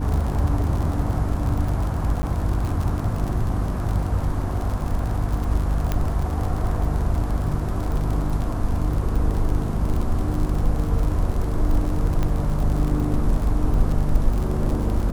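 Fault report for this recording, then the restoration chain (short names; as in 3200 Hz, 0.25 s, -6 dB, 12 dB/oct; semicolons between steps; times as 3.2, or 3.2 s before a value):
crackle 56/s -26 dBFS
hum 50 Hz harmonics 6 -26 dBFS
2.22–2.23 gap 10 ms
5.92 pop -10 dBFS
12.23 pop -13 dBFS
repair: de-click; de-hum 50 Hz, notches 6; interpolate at 2.22, 10 ms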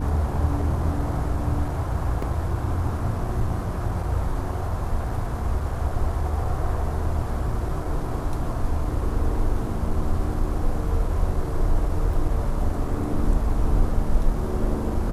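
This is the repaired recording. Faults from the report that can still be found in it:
5.92 pop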